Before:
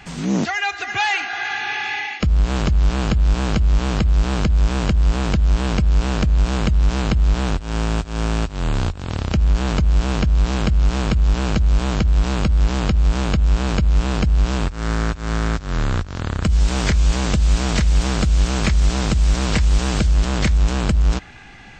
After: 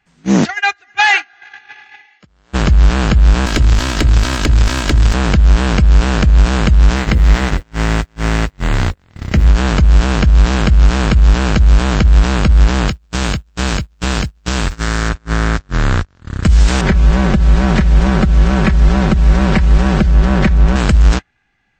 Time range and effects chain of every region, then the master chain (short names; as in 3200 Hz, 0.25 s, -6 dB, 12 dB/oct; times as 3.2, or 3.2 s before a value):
2.06–2.53 HPF 420 Hz 6 dB/oct + notch 2500 Hz, Q 17
3.46–5.14 minimum comb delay 3.1 ms + high shelf 2000 Hz +7.5 dB
6.96–9.46 bell 2000 Hz +8 dB 0.22 oct + notches 60/120/180/240/300/360/420/480/540 Hz + requantised 10-bit, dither triangular
12.88–15.09 high shelf 2700 Hz +9 dB + negative-ratio compressor -19 dBFS, ratio -0.5 + requantised 10-bit, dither triangular
16.81–20.76 LPF 1100 Hz 6 dB/oct + notches 50/100 Hz + comb 5.3 ms, depth 57%
whole clip: gate -20 dBFS, range -32 dB; bell 1700 Hz +4.5 dB 0.74 oct; maximiser +9.5 dB; gain -1 dB